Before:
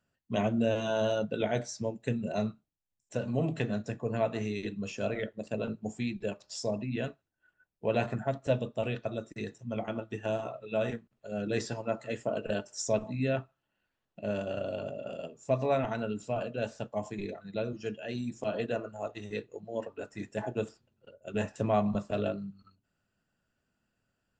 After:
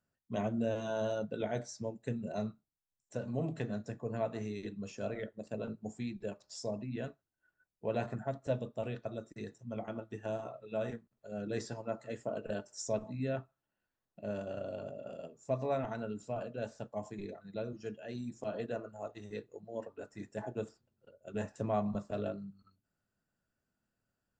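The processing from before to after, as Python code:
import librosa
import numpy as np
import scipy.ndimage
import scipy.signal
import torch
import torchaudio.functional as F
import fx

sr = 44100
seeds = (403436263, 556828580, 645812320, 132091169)

y = fx.peak_eq(x, sr, hz=2800.0, db=-6.5, octaves=0.78)
y = y * 10.0 ** (-5.5 / 20.0)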